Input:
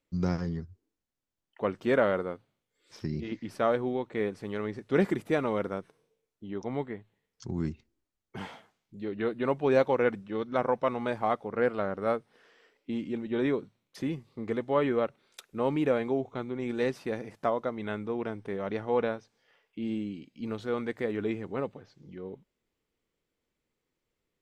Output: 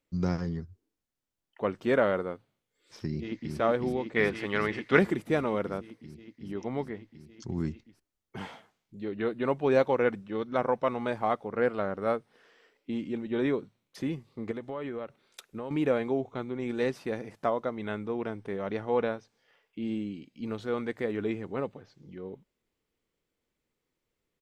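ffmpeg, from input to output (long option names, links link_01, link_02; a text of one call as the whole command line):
ffmpeg -i in.wav -filter_complex "[0:a]asplit=2[link_01][link_02];[link_02]afade=type=in:start_time=3.07:duration=0.01,afade=type=out:start_time=3.55:duration=0.01,aecho=0:1:370|740|1110|1480|1850|2220|2590|2960|3330|3700|4070|4440:0.668344|0.568092|0.482878|0.410447|0.34888|0.296548|0.252066|0.214256|0.182117|0.1548|0.13158|0.111843[link_03];[link_01][link_03]amix=inputs=2:normalize=0,asettb=1/sr,asplit=3[link_04][link_05][link_06];[link_04]atrim=end=4.164[link_07];[link_05]atrim=start=4.16:end=4.99,asetpts=PTS-STARTPTS,afade=type=in:duration=0.004:curve=qsin,afade=type=out:start_time=0.826:duration=0.004:curve=qsin,equalizer=frequency=1900:width=0.46:gain=12.5[link_08];[link_06]atrim=start=4.986[link_09];[link_07][link_08]acrossfade=duration=0.004:curve1=hsin:curve2=qsin[link_10];[link_10][link_09]acrossfade=duration=0.004:curve1=qsin:curve2=hsin,asettb=1/sr,asplit=3[link_11][link_12][link_13];[link_11]atrim=end=14.514[link_14];[link_12]atrim=start=14.51:end=15.71,asetpts=PTS-STARTPTS,afade=type=in:duration=0.004:curve=qsin,afade=type=out:start_time=1.196:duration=0.004:curve=qsin,acompressor=threshold=-33dB:ratio=6:attack=3.2:release=140:knee=1:detection=peak[link_15];[link_13]atrim=start=15.706[link_16];[link_14][link_15]acrossfade=duration=0.004:curve1=hsin:curve2=qsin[link_17];[link_17][link_16]acrossfade=duration=0.004:curve1=qsin:curve2=hsin" out.wav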